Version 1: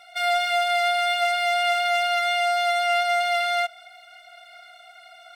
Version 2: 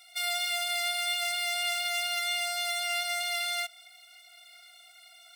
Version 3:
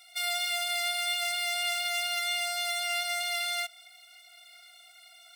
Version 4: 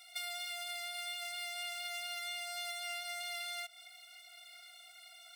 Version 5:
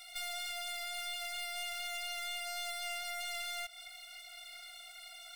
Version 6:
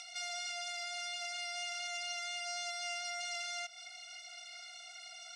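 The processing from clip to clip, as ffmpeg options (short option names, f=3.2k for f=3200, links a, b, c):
-af "aderivative,bandreject=f=1.5k:w=9.9,volume=4dB"
-af anull
-af "acompressor=threshold=-37dB:ratio=12,volume=-1.5dB"
-af "aeval=exprs='(tanh(141*val(0)+0.35)-tanh(0.35))/141':c=same,volume=6dB"
-af "acompressor=mode=upward:threshold=-46dB:ratio=2.5,highpass=360,equalizer=f=500:t=q:w=4:g=-6,equalizer=f=1.1k:t=q:w=4:g=-7,equalizer=f=1.8k:t=q:w=4:g=-6,equalizer=f=3.6k:t=q:w=4:g=-6,equalizer=f=5.8k:t=q:w=4:g=8,lowpass=f=7.1k:w=0.5412,lowpass=f=7.1k:w=1.3066,volume=2dB"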